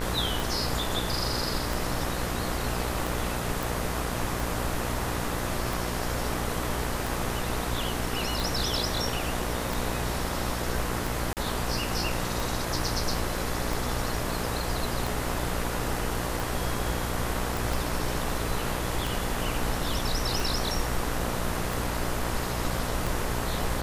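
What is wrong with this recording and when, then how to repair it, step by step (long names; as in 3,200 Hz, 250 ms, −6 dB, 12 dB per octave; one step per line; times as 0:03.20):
mains buzz 60 Hz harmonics 34 −33 dBFS
scratch tick 45 rpm
0:03.63: click
0:11.33–0:11.37: drop-out 38 ms
0:17.57: click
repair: click removal
hum removal 60 Hz, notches 34
repair the gap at 0:11.33, 38 ms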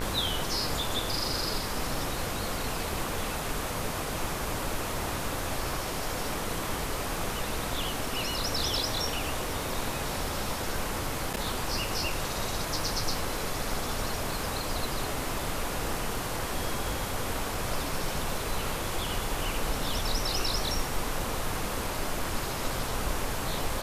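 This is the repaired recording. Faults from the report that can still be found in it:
none of them is left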